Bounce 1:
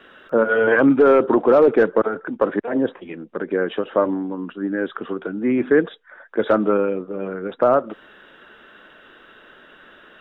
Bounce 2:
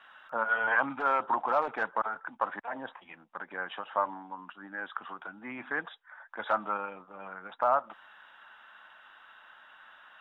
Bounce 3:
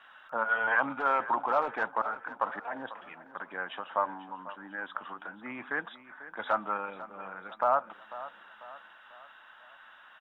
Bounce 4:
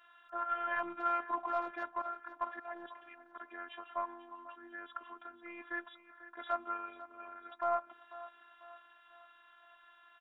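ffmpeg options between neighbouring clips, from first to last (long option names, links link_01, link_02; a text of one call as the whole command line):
ffmpeg -i in.wav -af "lowshelf=frequency=600:width_type=q:width=3:gain=-12.5,volume=-8.5dB" out.wav
ffmpeg -i in.wav -af "aecho=1:1:495|990|1485|1980:0.168|0.0772|0.0355|0.0163" out.wav
ffmpeg -i in.wav -af "aeval=exprs='0.224*(cos(1*acos(clip(val(0)/0.224,-1,1)))-cos(1*PI/2))+0.0112*(cos(2*acos(clip(val(0)/0.224,-1,1)))-cos(2*PI/2))':channel_layout=same,afftfilt=real='hypot(re,im)*cos(PI*b)':imag='0':win_size=512:overlap=0.75,volume=-4dB" out.wav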